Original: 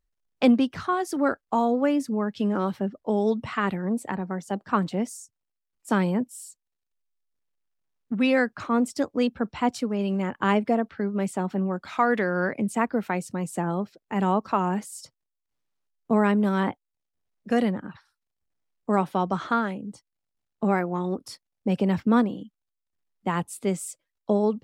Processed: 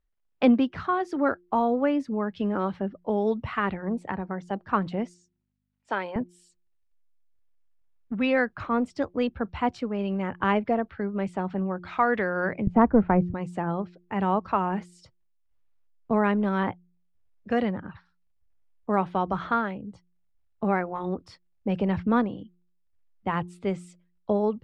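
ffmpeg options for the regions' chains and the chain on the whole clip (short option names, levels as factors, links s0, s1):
-filter_complex "[0:a]asettb=1/sr,asplit=3[s0][s1][s2];[s0]atrim=end=5.144[s3];[s1]atrim=start=5.14:end=6.16,asetpts=PTS-STARTPTS,afade=t=in:d=0.004:c=qsin,afade=t=out:st=1.016:d=0.004:c=qsin,bandreject=f=1200:w=11,aeval=exprs='val(0)+0.00158*(sin(2*PI*50*n/s)+sin(2*PI*2*50*n/s)/2+sin(2*PI*3*50*n/s)/3+sin(2*PI*4*50*n/s)/4+sin(2*PI*5*50*n/s)/5)':c=same,highpass=490,lowpass=6200[s4];[s2]atrim=start=6.156[s5];[s3][s4]acrossfade=d=0.004:c1=hsin:c2=qsin[s6];[s6][s5]acrossfade=d=0.004:c1=qsin:c2=hsin,asettb=1/sr,asplit=3[s7][s8][s9];[s7]atrim=end=12.674[s10];[s8]atrim=start=12.67:end=13.34,asetpts=PTS-STARTPTS,afade=t=in:d=0.004:c=qsin,afade=t=out:st=0.666:d=0.004:c=qsin,lowpass=1100,lowshelf=f=200:g=11,acontrast=60[s11];[s9]atrim=start=13.336[s12];[s10][s11]acrossfade=d=0.004:c1=hsin:c2=qsin[s13];[s13][s12]acrossfade=d=0.004:c1=qsin:c2=hsin,lowpass=3000,bandreject=f=176.8:t=h:w=4,bandreject=f=353.6:t=h:w=4,asubboost=boost=5.5:cutoff=87"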